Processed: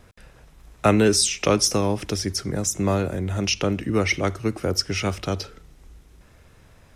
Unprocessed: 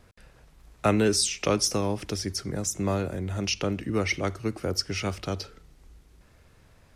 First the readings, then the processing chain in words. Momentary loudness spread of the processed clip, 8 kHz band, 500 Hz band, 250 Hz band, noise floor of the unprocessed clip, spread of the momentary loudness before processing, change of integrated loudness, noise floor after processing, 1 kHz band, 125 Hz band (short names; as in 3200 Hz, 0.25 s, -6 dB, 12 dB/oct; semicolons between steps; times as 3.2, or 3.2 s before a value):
8 LU, +5.0 dB, +5.0 dB, +5.0 dB, -57 dBFS, 8 LU, +5.0 dB, -52 dBFS, +5.0 dB, +5.0 dB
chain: notch 4500 Hz, Q 15; gain +5 dB